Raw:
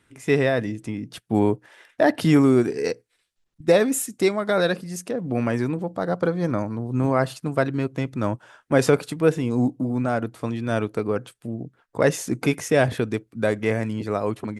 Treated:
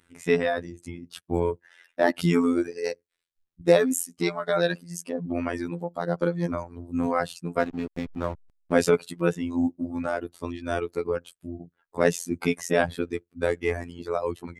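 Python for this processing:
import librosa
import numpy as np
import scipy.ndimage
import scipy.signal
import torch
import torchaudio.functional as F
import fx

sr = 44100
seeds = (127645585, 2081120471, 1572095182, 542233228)

y = fx.dereverb_blind(x, sr, rt60_s=1.6)
y = fx.robotise(y, sr, hz=86.1)
y = fx.backlash(y, sr, play_db=-32.5, at=(7.58, 8.72), fade=0.02)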